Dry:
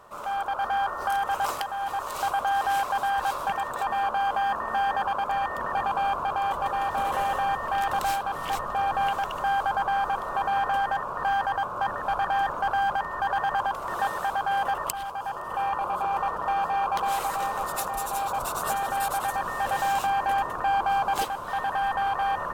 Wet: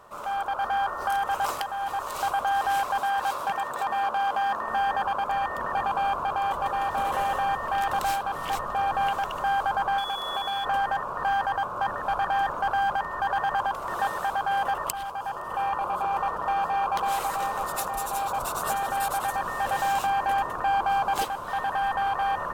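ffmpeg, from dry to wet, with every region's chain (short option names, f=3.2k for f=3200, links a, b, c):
-filter_complex "[0:a]asettb=1/sr,asplit=3[a][b][c];[a]atrim=end=2.994[d];[b]atrim=start=2.99:end=4.68,asetpts=PTS-STARTPTS,afade=t=in:d=0.004:c=qsin,afade=t=out:st=1.686:d=0.004:c=qsin,highpass=f=150:p=1,asoftclip=type=hard:threshold=-20.5dB[e];[c]atrim=start=4.676[f];[d][e]acrossfade=d=0.004:c1=hsin:c2=qsin[g];[g][f]acrossfade=d=0.004:c1=qsin:c2=hsin,asettb=1/sr,asplit=3[h][i][j];[h]atrim=end=9.984[k];[i]atrim=start=9.98:end=10.65,asetpts=PTS-STARTPTS,afade=t=in:d=0.004:c=qsin,afade=t=out:st=0.666:d=0.004:c=qsin,highshelf=f=4.1k:g=10,acrossover=split=190|3900[l][m][n];[l]acompressor=threshold=-54dB:ratio=4[o];[m]acompressor=threshold=-28dB:ratio=4[p];[n]acompressor=threshold=-50dB:ratio=4[q];[o][p][q]amix=inputs=3:normalize=0,aeval=exprs='val(0)+0.0224*sin(2*PI*3400*n/s)':c=same[r];[j]atrim=start=10.646[s];[k][r]acrossfade=d=0.004:c1=hsin:c2=qsin[t];[t][s]acrossfade=d=0.004:c1=qsin:c2=hsin"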